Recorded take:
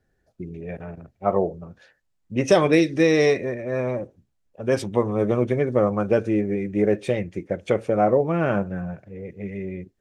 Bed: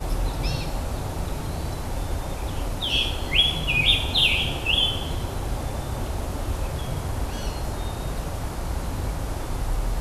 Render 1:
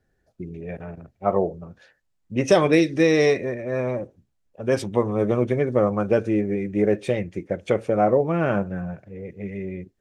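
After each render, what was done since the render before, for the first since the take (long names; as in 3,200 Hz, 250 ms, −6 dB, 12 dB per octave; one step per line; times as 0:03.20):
no processing that can be heard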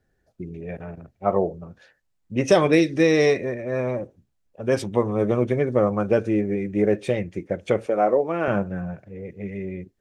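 0:07.86–0:08.48: high-pass filter 300 Hz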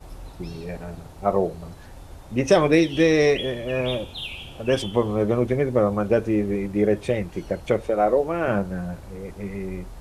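mix in bed −14 dB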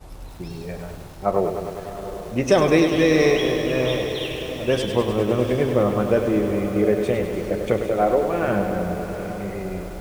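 feedback delay with all-pass diffusion 746 ms, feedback 46%, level −10.5 dB
feedback echo at a low word length 101 ms, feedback 80%, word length 7 bits, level −8 dB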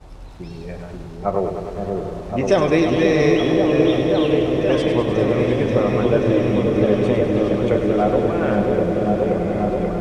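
high-frequency loss of the air 60 metres
echo whose low-pass opens from repeat to repeat 534 ms, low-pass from 400 Hz, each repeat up 1 octave, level 0 dB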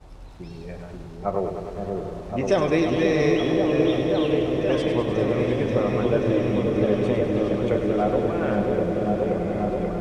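level −4.5 dB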